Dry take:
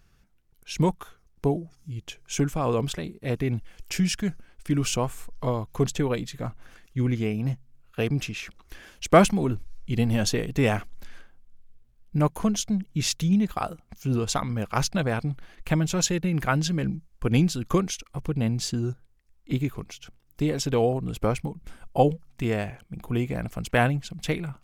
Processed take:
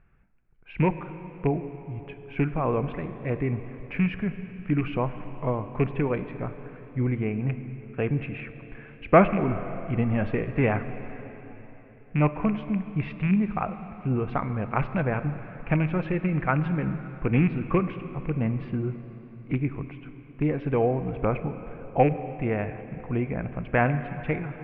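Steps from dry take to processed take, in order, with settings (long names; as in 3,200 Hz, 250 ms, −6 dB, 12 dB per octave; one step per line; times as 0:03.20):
loose part that buzzes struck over −22 dBFS, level −21 dBFS
elliptic low-pass filter 2,400 Hz, stop band 70 dB
dense smooth reverb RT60 3.9 s, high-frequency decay 0.9×, DRR 10 dB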